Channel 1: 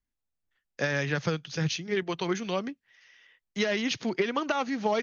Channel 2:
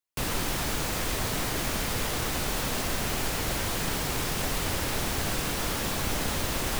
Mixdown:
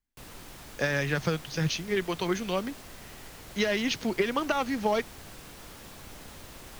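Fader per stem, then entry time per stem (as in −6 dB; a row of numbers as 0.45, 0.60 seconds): +0.5, −17.0 decibels; 0.00, 0.00 seconds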